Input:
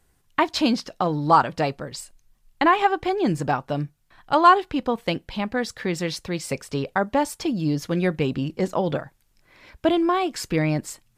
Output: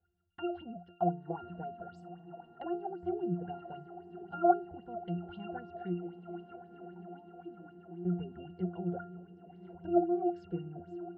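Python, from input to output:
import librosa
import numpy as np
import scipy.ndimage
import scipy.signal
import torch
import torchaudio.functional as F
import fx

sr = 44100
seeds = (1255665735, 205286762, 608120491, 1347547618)

y = fx.env_lowpass_down(x, sr, base_hz=540.0, full_db=-17.0)
y = fx.vowel_filter(y, sr, vowel='u', at=(5.92, 8.05))
y = fx.octave_resonator(y, sr, note='F', decay_s=0.37)
y = fx.echo_diffused(y, sr, ms=1065, feedback_pct=66, wet_db=-14.0)
y = fx.bell_lfo(y, sr, hz=3.8, low_hz=520.0, high_hz=7600.0, db=15)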